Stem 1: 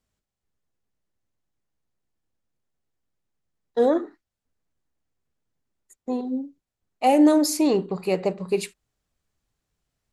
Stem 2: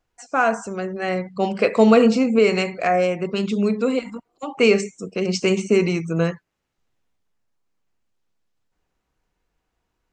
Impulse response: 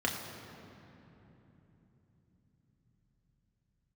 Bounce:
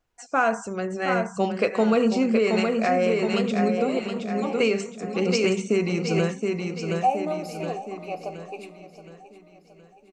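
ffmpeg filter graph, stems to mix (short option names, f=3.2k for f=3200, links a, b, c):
-filter_complex "[0:a]asplit=3[a][b][c];[a]bandpass=f=730:t=q:w=8,volume=0dB[d];[b]bandpass=f=1.09k:t=q:w=8,volume=-6dB[e];[c]bandpass=f=2.44k:t=q:w=8,volume=-9dB[f];[d][e][f]amix=inputs=3:normalize=0,aemphasis=mode=production:type=50kf,volume=0dB,asplit=3[g][h][i];[h]volume=-15dB[j];[i]volume=-14.5dB[k];[1:a]volume=-1.5dB,asplit=2[l][m];[m]volume=-6.5dB[n];[2:a]atrim=start_sample=2205[o];[j][o]afir=irnorm=-1:irlink=0[p];[k][n]amix=inputs=2:normalize=0,aecho=0:1:720|1440|2160|2880|3600|4320|5040:1|0.47|0.221|0.104|0.0488|0.0229|0.0108[q];[g][l][p][q]amix=inputs=4:normalize=0,alimiter=limit=-11.5dB:level=0:latency=1:release=417"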